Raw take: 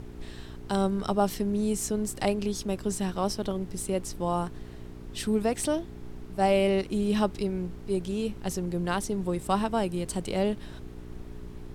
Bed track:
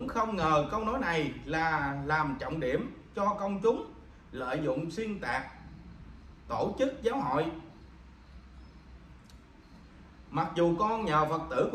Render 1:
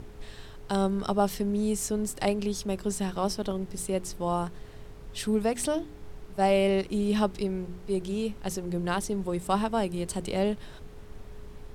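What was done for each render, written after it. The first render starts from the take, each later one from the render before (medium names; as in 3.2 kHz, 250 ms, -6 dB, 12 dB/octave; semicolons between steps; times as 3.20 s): de-hum 60 Hz, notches 6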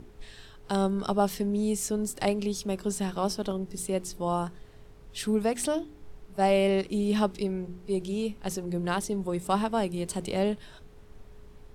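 noise print and reduce 6 dB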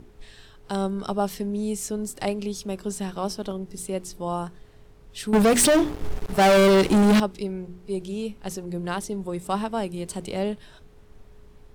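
5.33–7.20 s: waveshaping leveller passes 5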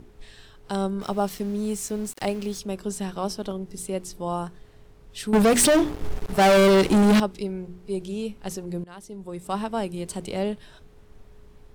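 1.01–2.59 s: small samples zeroed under -40.5 dBFS; 8.84–9.75 s: fade in, from -21.5 dB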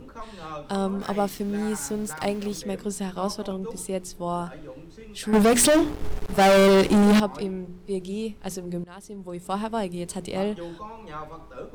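add bed track -10.5 dB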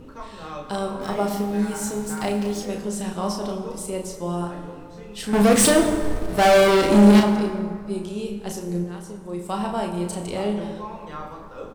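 doubling 34 ms -5.5 dB; plate-style reverb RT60 2.2 s, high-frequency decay 0.5×, DRR 5 dB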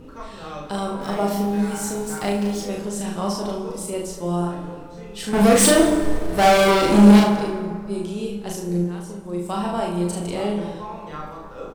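doubling 40 ms -3.5 dB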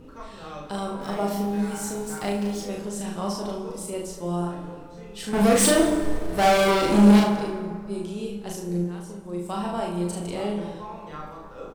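trim -4 dB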